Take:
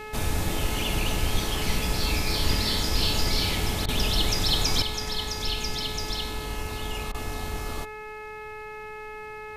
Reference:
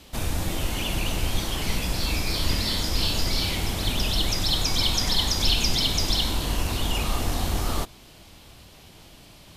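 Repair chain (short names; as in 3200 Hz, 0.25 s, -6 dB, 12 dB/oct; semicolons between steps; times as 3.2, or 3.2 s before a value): de-hum 427.9 Hz, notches 6; interpolate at 3.86/7.12, 23 ms; noise print and reduce 10 dB; gain 0 dB, from 4.82 s +7.5 dB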